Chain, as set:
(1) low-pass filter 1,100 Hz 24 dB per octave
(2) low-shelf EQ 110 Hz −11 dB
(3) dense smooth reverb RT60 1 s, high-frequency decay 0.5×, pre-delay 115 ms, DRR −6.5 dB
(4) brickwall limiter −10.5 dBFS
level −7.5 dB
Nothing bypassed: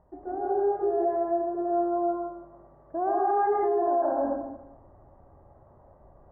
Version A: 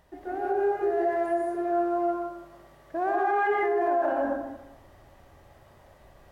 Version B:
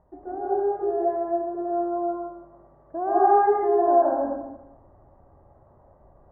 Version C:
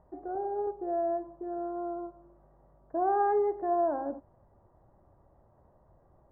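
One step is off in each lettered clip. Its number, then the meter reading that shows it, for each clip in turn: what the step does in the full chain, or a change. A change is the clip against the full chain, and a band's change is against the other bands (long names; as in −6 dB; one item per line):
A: 1, 2 kHz band +13.0 dB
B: 4, change in crest factor +6.5 dB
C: 3, change in crest factor +5.0 dB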